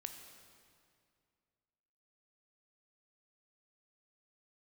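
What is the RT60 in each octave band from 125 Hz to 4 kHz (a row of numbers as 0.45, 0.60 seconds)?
2.6, 2.5, 2.4, 2.2, 2.0, 1.9 seconds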